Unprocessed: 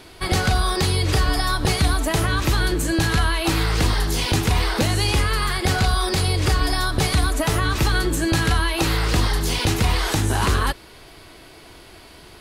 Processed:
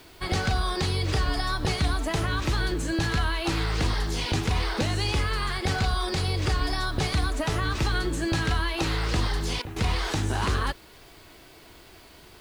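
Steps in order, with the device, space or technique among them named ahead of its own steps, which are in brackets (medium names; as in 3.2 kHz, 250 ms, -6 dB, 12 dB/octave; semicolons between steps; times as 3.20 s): worn cassette (low-pass 7.3 kHz 12 dB/octave; wow and flutter 26 cents; level dips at 9.62 s, 140 ms -11 dB; white noise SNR 33 dB); trim -6 dB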